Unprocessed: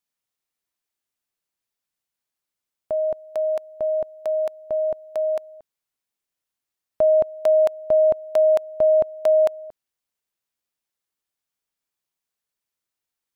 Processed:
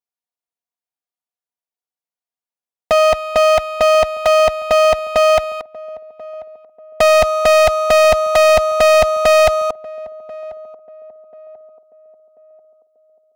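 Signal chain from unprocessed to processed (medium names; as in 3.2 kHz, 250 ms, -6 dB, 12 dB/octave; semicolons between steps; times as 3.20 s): comb filter that takes the minimum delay 4.2 ms; high-pass 47 Hz 12 dB/octave; peaking EQ 740 Hz +9.5 dB 1.2 oct; waveshaping leveller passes 5; band-passed feedback delay 1038 ms, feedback 43%, band-pass 420 Hz, level -18 dB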